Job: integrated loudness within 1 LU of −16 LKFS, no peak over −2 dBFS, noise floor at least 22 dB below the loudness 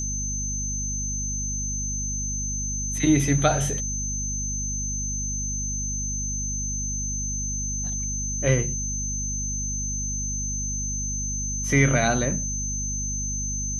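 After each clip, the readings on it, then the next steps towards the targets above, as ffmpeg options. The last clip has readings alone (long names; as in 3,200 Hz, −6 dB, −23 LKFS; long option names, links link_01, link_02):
mains hum 50 Hz; hum harmonics up to 250 Hz; level of the hum −29 dBFS; interfering tone 6,200 Hz; level of the tone −28 dBFS; integrated loudness −25.5 LKFS; sample peak −6.0 dBFS; target loudness −16.0 LKFS
→ -af "bandreject=frequency=50:width_type=h:width=6,bandreject=frequency=100:width_type=h:width=6,bandreject=frequency=150:width_type=h:width=6,bandreject=frequency=200:width_type=h:width=6,bandreject=frequency=250:width_type=h:width=6"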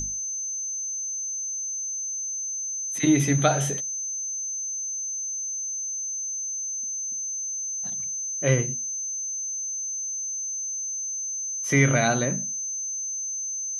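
mains hum none found; interfering tone 6,200 Hz; level of the tone −28 dBFS
→ -af "bandreject=frequency=6200:width=30"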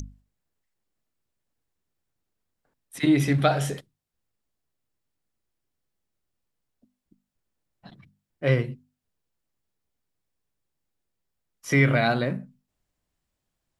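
interfering tone none found; integrated loudness −23.5 LKFS; sample peak −8.0 dBFS; target loudness −16.0 LKFS
→ -af "volume=7.5dB,alimiter=limit=-2dB:level=0:latency=1"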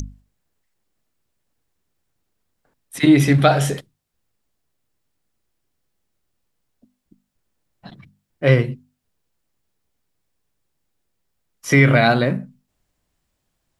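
integrated loudness −16.5 LKFS; sample peak −2.0 dBFS; background noise floor −74 dBFS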